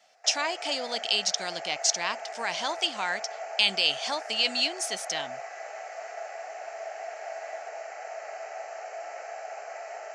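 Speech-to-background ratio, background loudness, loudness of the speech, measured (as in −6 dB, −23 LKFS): 11.5 dB, −39.0 LKFS, −27.5 LKFS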